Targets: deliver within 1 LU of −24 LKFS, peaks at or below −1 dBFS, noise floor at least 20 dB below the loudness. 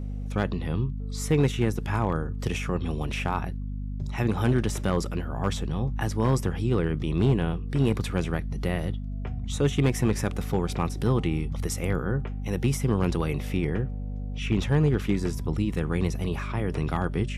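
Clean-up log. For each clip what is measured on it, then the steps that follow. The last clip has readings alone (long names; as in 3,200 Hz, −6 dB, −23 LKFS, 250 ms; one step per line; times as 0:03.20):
share of clipped samples 0.4%; peaks flattened at −14.0 dBFS; mains hum 50 Hz; hum harmonics up to 250 Hz; level of the hum −30 dBFS; integrated loudness −27.5 LKFS; sample peak −14.0 dBFS; target loudness −24.0 LKFS
→ clipped peaks rebuilt −14 dBFS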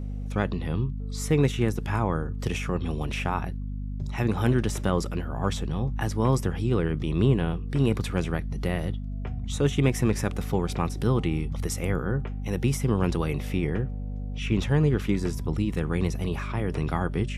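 share of clipped samples 0.0%; mains hum 50 Hz; hum harmonics up to 250 Hz; level of the hum −29 dBFS
→ hum removal 50 Hz, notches 5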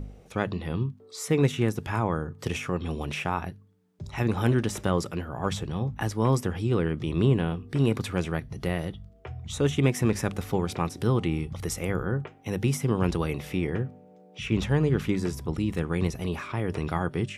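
mains hum none found; integrated loudness −28.0 LKFS; sample peak −8.5 dBFS; target loudness −24.0 LKFS
→ level +4 dB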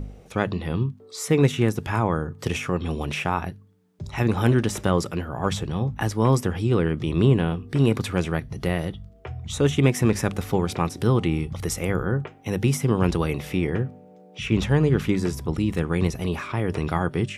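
integrated loudness −24.0 LKFS; sample peak −4.5 dBFS; background noise floor −49 dBFS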